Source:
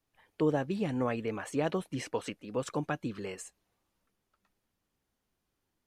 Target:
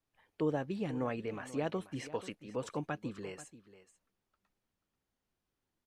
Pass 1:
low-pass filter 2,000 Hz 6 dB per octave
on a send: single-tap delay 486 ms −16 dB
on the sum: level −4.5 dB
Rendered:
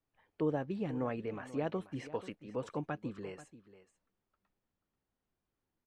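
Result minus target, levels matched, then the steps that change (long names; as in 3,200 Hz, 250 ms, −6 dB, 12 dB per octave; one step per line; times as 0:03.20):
8,000 Hz band −8.5 dB
change: low-pass filter 8,000 Hz 6 dB per octave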